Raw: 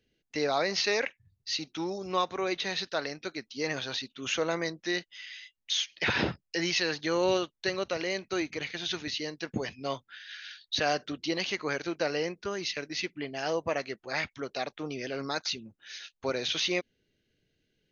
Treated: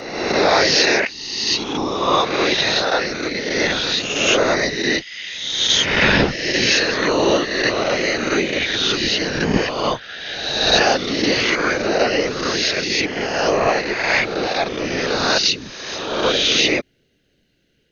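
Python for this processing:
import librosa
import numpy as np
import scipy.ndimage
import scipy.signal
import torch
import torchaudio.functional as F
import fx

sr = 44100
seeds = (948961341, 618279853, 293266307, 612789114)

p1 = fx.spec_swells(x, sr, rise_s=1.3)
p2 = fx.rider(p1, sr, range_db=10, speed_s=2.0)
p3 = p1 + F.gain(torch.from_numpy(p2), -2.0).numpy()
p4 = fx.whisperise(p3, sr, seeds[0])
y = F.gain(torch.from_numpy(p4), 4.5).numpy()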